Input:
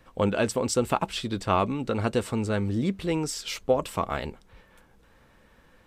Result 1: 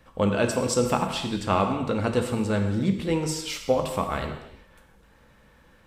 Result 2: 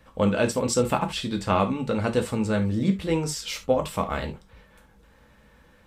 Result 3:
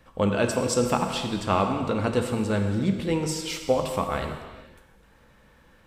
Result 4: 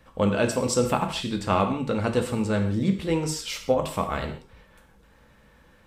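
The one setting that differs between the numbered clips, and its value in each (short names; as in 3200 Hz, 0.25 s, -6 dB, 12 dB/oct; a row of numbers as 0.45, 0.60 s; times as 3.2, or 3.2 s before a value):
non-linear reverb, gate: 0.35, 0.1, 0.53, 0.2 s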